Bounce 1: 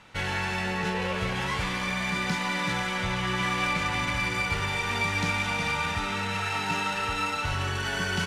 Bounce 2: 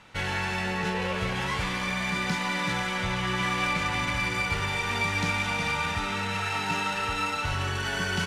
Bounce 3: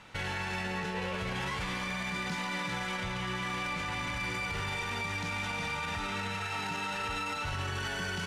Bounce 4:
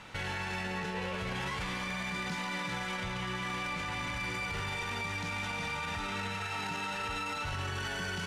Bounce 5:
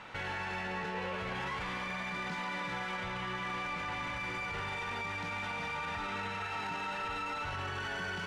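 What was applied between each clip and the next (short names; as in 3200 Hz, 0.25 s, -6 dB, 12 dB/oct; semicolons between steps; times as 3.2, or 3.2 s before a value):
nothing audible
limiter -26.5 dBFS, peak gain reduction 11.5 dB
limiter -31.5 dBFS, peak gain reduction 5 dB; gain +3.5 dB
overdrive pedal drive 10 dB, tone 1500 Hz, clips at -27.5 dBFS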